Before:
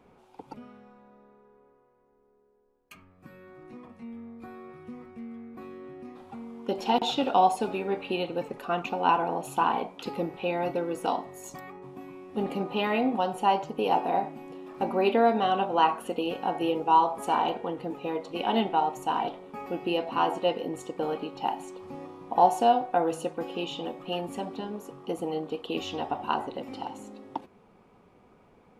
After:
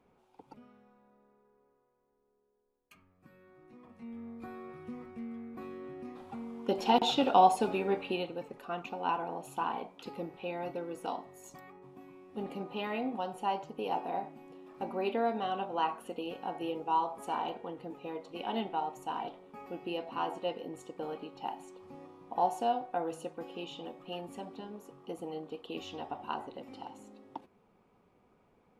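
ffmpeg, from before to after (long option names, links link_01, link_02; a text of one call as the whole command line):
ffmpeg -i in.wav -af "volume=-1dB,afade=type=in:start_time=3.77:duration=0.53:silence=0.354813,afade=type=out:start_time=7.9:duration=0.48:silence=0.398107" out.wav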